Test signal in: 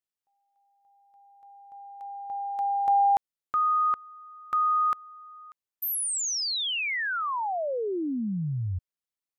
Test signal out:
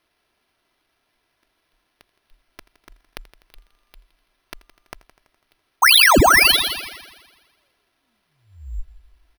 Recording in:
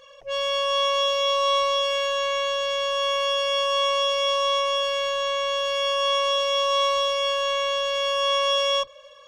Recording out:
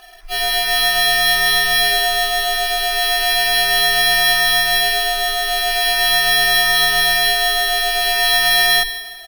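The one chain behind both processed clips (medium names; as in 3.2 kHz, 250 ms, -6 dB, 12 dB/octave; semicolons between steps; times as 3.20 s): inverse Chebyshev band-stop 210–1400 Hz, stop band 70 dB; comb 3 ms, depth 66%; frequency shift -41 Hz; multi-head delay 83 ms, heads first and second, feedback 52%, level -20 dB; careless resampling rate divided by 6×, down none, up hold; loudness maximiser +26.5 dB; trim -5 dB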